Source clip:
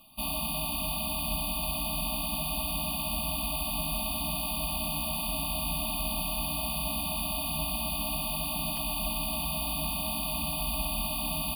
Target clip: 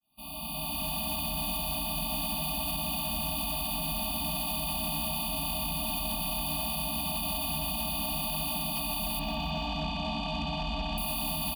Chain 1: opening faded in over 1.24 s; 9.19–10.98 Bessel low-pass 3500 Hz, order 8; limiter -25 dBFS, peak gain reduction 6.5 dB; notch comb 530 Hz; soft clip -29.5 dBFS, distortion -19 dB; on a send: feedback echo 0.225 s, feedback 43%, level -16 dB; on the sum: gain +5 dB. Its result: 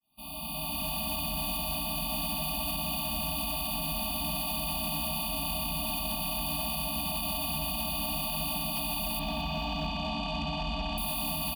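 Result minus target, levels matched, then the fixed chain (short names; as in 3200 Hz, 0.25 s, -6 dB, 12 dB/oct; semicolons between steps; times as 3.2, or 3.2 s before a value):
echo 70 ms late
opening faded in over 1.24 s; 9.19–10.98 Bessel low-pass 3500 Hz, order 8; limiter -25 dBFS, peak gain reduction 6.5 dB; notch comb 530 Hz; soft clip -29.5 dBFS, distortion -19 dB; on a send: feedback echo 0.155 s, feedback 43%, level -16 dB; on the sum: gain +5 dB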